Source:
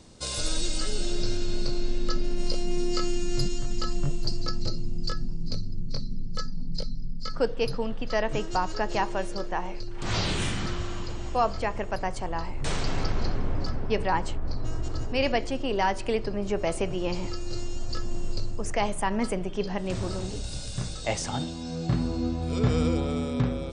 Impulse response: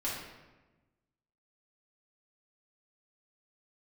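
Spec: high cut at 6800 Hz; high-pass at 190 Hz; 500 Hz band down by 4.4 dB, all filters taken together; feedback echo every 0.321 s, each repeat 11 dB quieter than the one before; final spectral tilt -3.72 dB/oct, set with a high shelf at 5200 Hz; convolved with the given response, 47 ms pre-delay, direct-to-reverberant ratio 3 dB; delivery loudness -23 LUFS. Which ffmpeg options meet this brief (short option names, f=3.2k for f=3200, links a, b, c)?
-filter_complex "[0:a]highpass=190,lowpass=6.8k,equalizer=f=500:t=o:g=-5.5,highshelf=f=5.2k:g=-8.5,aecho=1:1:321|642|963:0.282|0.0789|0.0221,asplit=2[a][b];[1:a]atrim=start_sample=2205,adelay=47[c];[b][c]afir=irnorm=-1:irlink=0,volume=-8dB[d];[a][d]amix=inputs=2:normalize=0,volume=10dB"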